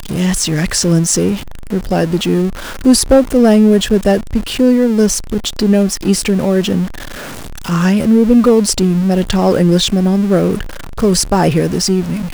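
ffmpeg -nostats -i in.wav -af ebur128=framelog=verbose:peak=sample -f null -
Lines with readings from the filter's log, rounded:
Integrated loudness:
  I:         -13.0 LUFS
  Threshold: -23.2 LUFS
Loudness range:
  LRA:         2.6 LU
  Threshold: -32.9 LUFS
  LRA low:   -14.5 LUFS
  LRA high:  -11.9 LUFS
Sample peak:
  Peak:       -1.9 dBFS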